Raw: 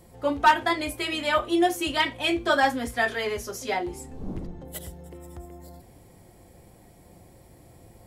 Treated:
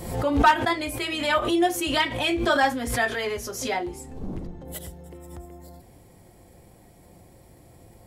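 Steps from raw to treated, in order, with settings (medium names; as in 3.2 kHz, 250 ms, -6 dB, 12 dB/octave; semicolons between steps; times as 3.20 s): swell ahead of each attack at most 67 dB/s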